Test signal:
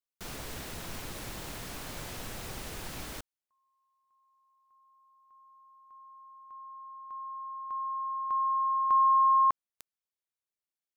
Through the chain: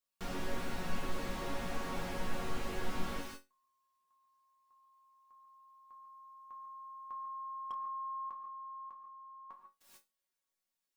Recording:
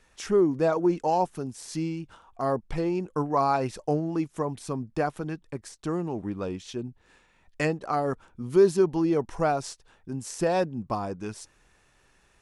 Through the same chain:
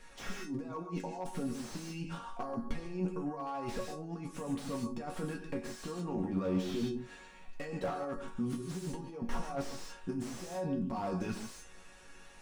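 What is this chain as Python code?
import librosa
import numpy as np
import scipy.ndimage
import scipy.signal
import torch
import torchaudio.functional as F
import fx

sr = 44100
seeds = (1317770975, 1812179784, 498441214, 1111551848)

y = fx.over_compress(x, sr, threshold_db=-36.0, ratio=-1.0)
y = fx.resonator_bank(y, sr, root=54, chord='major', decay_s=0.22)
y = fx.rev_gated(y, sr, seeds[0], gate_ms=170, shape='rising', drr_db=6.5)
y = fx.slew_limit(y, sr, full_power_hz=3.9)
y = y * 10.0 ** (13.0 / 20.0)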